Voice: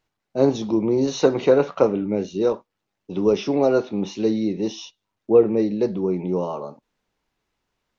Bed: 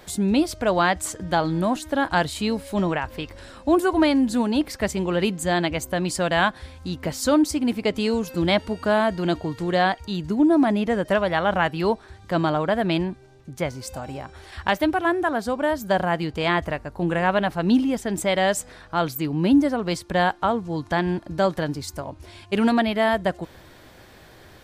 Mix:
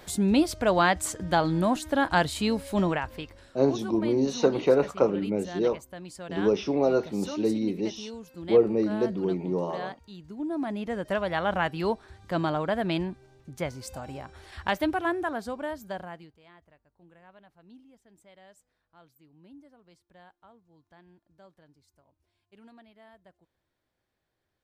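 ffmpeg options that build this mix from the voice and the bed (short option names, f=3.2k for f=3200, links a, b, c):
-filter_complex "[0:a]adelay=3200,volume=-5dB[a];[1:a]volume=10dB,afade=t=out:st=2.83:d=0.76:silence=0.16788,afade=t=in:st=10.32:d=1.12:silence=0.251189,afade=t=out:st=14.99:d=1.39:silence=0.0375837[b];[a][b]amix=inputs=2:normalize=0"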